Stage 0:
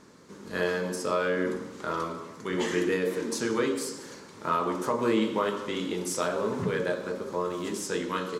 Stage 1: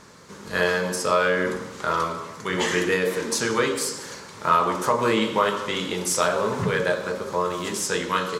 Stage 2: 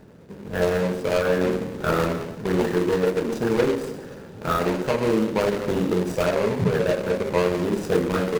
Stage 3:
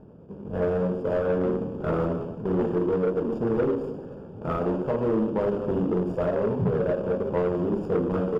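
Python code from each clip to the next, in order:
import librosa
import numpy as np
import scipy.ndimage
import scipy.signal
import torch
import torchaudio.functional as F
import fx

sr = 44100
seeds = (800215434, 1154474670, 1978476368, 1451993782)

y1 = fx.peak_eq(x, sr, hz=290.0, db=-10.0, octaves=1.2)
y1 = F.gain(torch.from_numpy(y1), 9.0).numpy()
y2 = scipy.signal.medfilt(y1, 41)
y2 = fx.rider(y2, sr, range_db=4, speed_s=0.5)
y2 = F.gain(torch.from_numpy(y2), 6.0).numpy()
y3 = np.convolve(y2, np.full(22, 1.0 / 22))[:len(y2)]
y3 = 10.0 ** (-17.0 / 20.0) * np.tanh(y3 / 10.0 ** (-17.0 / 20.0))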